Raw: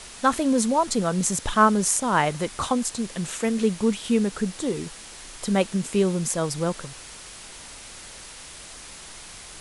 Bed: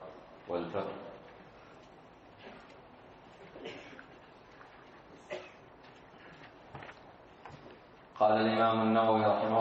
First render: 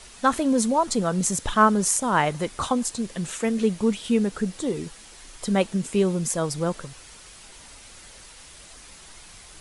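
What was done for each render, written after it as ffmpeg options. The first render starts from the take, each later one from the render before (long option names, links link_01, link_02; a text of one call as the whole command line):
ffmpeg -i in.wav -af "afftdn=noise_reduction=6:noise_floor=-42" out.wav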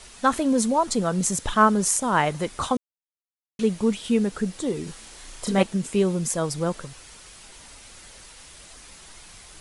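ffmpeg -i in.wav -filter_complex "[0:a]asettb=1/sr,asplit=3[link_01][link_02][link_03];[link_01]atrim=end=4.844[link_04];[link_02]atrim=start=4.84:end=5.63,asetpts=PTS-STARTPTS,afade=type=in:duration=0.004:curve=qsin,afade=type=out:start_time=0.786:duration=0.004:curve=qsin,asplit=2[link_05][link_06];[link_06]adelay=32,volume=-2dB[link_07];[link_05][link_07]amix=inputs=2:normalize=0,atrim=end_sample=34839[link_08];[link_03]atrim=start=5.626[link_09];[link_04][link_08]acrossfade=duration=0.004:curve1=hsin:curve2=qsin[link_10];[link_10][link_09]acrossfade=duration=0.004:curve1=qsin:curve2=hsin,asplit=3[link_11][link_12][link_13];[link_11]atrim=end=2.77,asetpts=PTS-STARTPTS,afade=type=out:start_time=2.766:duration=0.004:curve=hsin[link_14];[link_12]atrim=start=2.77:end=3.59,asetpts=PTS-STARTPTS,volume=0[link_15];[link_13]atrim=start=3.59,asetpts=PTS-STARTPTS,afade=type=in:duration=0.004:curve=hsin[link_16];[link_14][link_15][link_16]concat=n=3:v=0:a=1" out.wav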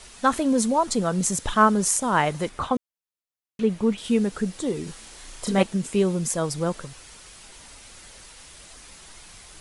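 ffmpeg -i in.wav -filter_complex "[0:a]asettb=1/sr,asplit=3[link_01][link_02][link_03];[link_01]atrim=end=2.494[link_04];[link_02]atrim=start=2.49:end=3.98,asetpts=PTS-STARTPTS,afade=type=in:duration=0.004:curve=qsin,afade=type=out:start_time=1.486:duration=0.004:curve=qsin,acrossover=split=3200[link_05][link_06];[link_06]acompressor=threshold=-52dB:ratio=4:attack=1:release=60[link_07];[link_05][link_07]amix=inputs=2:normalize=0[link_08];[link_03]atrim=start=3.976[link_09];[link_04][link_08]acrossfade=duration=0.004:curve1=hsin:curve2=qsin[link_10];[link_10][link_09]acrossfade=duration=0.004:curve1=qsin:curve2=hsin" out.wav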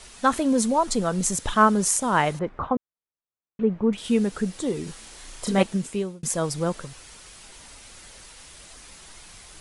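ffmpeg -i in.wav -filter_complex "[0:a]asettb=1/sr,asplit=3[link_01][link_02][link_03];[link_01]atrim=end=0.514[link_04];[link_02]atrim=start=0.51:end=1.39,asetpts=PTS-STARTPTS,afade=type=in:duration=0.004:curve=qsin,afade=type=out:start_time=0.876:duration=0.004:curve=qsin,asubboost=boost=11.5:cutoff=52[link_05];[link_03]atrim=start=1.386[link_06];[link_04][link_05]acrossfade=duration=0.004:curve1=hsin:curve2=qsin[link_07];[link_07][link_06]acrossfade=duration=0.004:curve1=qsin:curve2=hsin,asettb=1/sr,asplit=3[link_08][link_09][link_10];[link_08]atrim=end=2.394[link_11];[link_09]atrim=start=2.39:end=3.93,asetpts=PTS-STARTPTS,afade=type=in:duration=0.004:curve=qsin,afade=type=out:start_time=1.536:duration=0.004:curve=qsin,lowpass=1400[link_12];[link_10]atrim=start=3.926[link_13];[link_11][link_12]acrossfade=duration=0.004:curve1=hsin:curve2=qsin[link_14];[link_14][link_13]acrossfade=duration=0.004:curve1=qsin:curve2=hsin,asplit=2[link_15][link_16];[link_15]atrim=end=6.23,asetpts=PTS-STARTPTS,afade=type=out:start_time=5.76:duration=0.47[link_17];[link_16]atrim=start=6.23,asetpts=PTS-STARTPTS,afade=type=in:duration=0.004:curve=hsin[link_18];[link_17][link_18]concat=n=2:v=0:a=1" out.wav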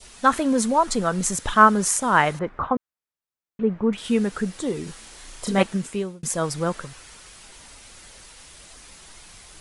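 ffmpeg -i in.wav -af "adynamicequalizer=threshold=0.0158:dfrequency=1500:dqfactor=1:tfrequency=1500:tqfactor=1:attack=5:release=100:ratio=0.375:range=3:mode=boostabove:tftype=bell" out.wav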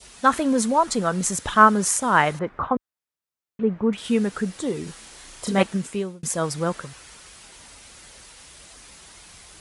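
ffmpeg -i in.wav -af "highpass=40" out.wav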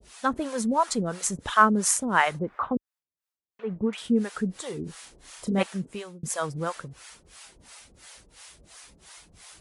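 ffmpeg -i in.wav -filter_complex "[0:a]acrossover=split=540[link_01][link_02];[link_01]aeval=exprs='val(0)*(1-1/2+1/2*cos(2*PI*2.9*n/s))':channel_layout=same[link_03];[link_02]aeval=exprs='val(0)*(1-1/2-1/2*cos(2*PI*2.9*n/s))':channel_layout=same[link_04];[link_03][link_04]amix=inputs=2:normalize=0" out.wav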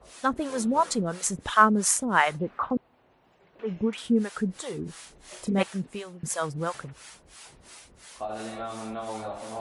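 ffmpeg -i in.wav -i bed.wav -filter_complex "[1:a]volume=-8dB[link_01];[0:a][link_01]amix=inputs=2:normalize=0" out.wav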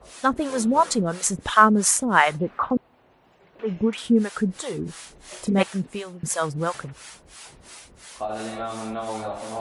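ffmpeg -i in.wav -af "volume=4.5dB,alimiter=limit=-2dB:level=0:latency=1" out.wav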